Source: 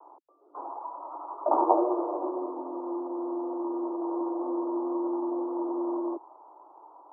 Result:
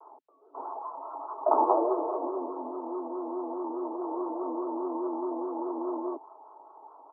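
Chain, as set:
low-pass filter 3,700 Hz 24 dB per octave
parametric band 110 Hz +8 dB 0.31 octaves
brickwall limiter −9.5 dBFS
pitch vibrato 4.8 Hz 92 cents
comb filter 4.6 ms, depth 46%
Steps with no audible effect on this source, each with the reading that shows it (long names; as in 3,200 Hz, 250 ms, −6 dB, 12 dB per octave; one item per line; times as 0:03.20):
low-pass filter 3,700 Hz: nothing at its input above 1,200 Hz
parametric band 110 Hz: nothing at its input below 250 Hz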